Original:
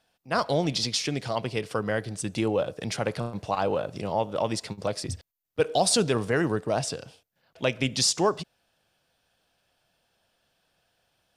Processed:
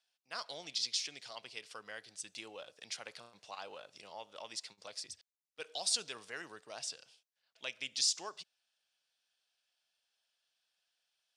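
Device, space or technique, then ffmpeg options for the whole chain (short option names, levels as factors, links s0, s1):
piezo pickup straight into a mixer: -af "lowpass=5500,aderivative,volume=0.841"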